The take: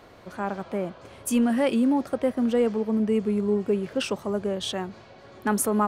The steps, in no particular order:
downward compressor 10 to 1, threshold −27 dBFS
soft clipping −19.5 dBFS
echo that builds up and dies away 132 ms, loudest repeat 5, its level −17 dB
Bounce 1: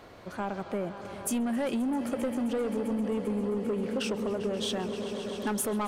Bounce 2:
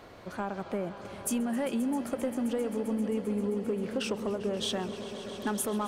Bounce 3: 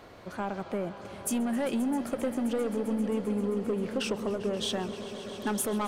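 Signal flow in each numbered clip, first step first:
echo that builds up and dies away, then soft clipping, then downward compressor
downward compressor, then echo that builds up and dies away, then soft clipping
soft clipping, then downward compressor, then echo that builds up and dies away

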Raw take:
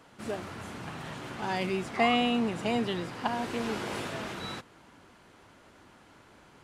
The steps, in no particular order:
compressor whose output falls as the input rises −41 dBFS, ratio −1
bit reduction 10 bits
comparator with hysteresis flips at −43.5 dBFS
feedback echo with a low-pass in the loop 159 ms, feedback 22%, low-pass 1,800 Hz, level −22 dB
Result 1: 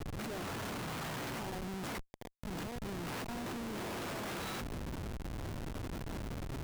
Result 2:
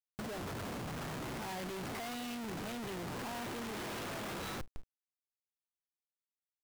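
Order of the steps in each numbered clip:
bit reduction, then compressor whose output falls as the input rises, then feedback echo with a low-pass in the loop, then comparator with hysteresis
feedback echo with a low-pass in the loop, then comparator with hysteresis, then compressor whose output falls as the input rises, then bit reduction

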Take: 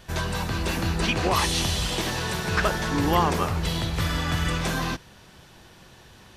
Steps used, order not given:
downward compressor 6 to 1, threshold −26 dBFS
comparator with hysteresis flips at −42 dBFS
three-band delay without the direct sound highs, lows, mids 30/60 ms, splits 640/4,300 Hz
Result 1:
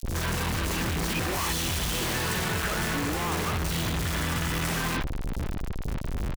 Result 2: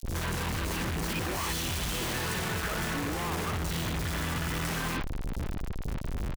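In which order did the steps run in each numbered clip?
comparator with hysteresis, then downward compressor, then three-band delay without the direct sound
downward compressor, then comparator with hysteresis, then three-band delay without the direct sound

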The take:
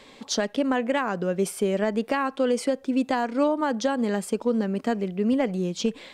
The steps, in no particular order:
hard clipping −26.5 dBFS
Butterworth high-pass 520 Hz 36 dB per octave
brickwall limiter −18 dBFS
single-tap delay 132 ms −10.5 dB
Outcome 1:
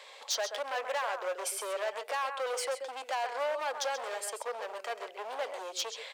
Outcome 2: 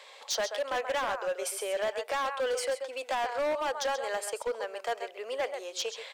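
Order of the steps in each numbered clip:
brickwall limiter, then single-tap delay, then hard clipping, then Butterworth high-pass
Butterworth high-pass, then brickwall limiter, then single-tap delay, then hard clipping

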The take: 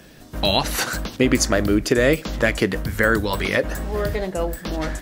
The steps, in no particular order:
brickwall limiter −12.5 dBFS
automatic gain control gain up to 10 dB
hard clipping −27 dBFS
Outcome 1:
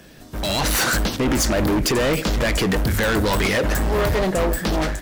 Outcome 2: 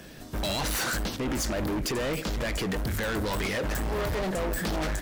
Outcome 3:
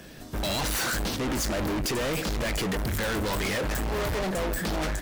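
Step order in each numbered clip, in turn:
brickwall limiter, then hard clipping, then automatic gain control
automatic gain control, then brickwall limiter, then hard clipping
brickwall limiter, then automatic gain control, then hard clipping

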